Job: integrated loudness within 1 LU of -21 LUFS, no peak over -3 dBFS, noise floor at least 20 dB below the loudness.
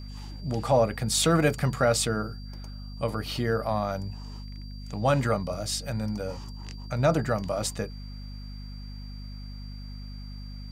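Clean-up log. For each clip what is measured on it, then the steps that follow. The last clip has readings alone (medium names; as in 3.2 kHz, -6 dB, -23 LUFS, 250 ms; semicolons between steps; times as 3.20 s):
hum 50 Hz; highest harmonic 250 Hz; hum level -37 dBFS; steady tone 4.7 kHz; tone level -50 dBFS; loudness -27.5 LUFS; peak level -10.0 dBFS; loudness target -21.0 LUFS
-> de-hum 50 Hz, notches 5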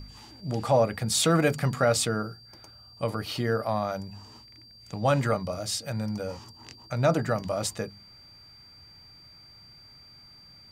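hum not found; steady tone 4.7 kHz; tone level -50 dBFS
-> band-stop 4.7 kHz, Q 30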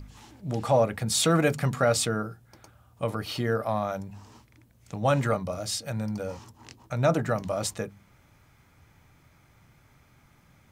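steady tone not found; loudness -27.5 LUFS; peak level -10.5 dBFS; loudness target -21.0 LUFS
-> trim +6.5 dB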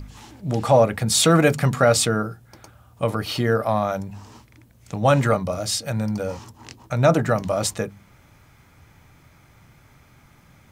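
loudness -21.0 LUFS; peak level -4.0 dBFS; noise floor -54 dBFS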